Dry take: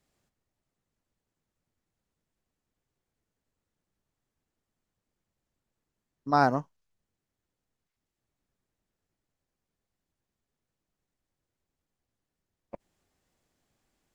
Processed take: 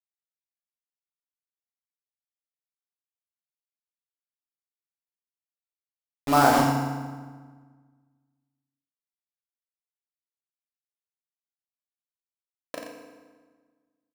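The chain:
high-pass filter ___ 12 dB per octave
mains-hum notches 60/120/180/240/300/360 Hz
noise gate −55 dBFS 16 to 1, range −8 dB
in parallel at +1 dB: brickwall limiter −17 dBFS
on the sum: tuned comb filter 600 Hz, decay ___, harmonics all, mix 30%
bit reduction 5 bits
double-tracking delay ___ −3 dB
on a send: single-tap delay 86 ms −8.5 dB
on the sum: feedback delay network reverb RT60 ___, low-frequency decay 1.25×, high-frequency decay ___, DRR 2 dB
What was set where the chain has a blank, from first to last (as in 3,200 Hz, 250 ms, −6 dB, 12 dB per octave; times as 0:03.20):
50 Hz, 0.19 s, 36 ms, 1.5 s, 0.75×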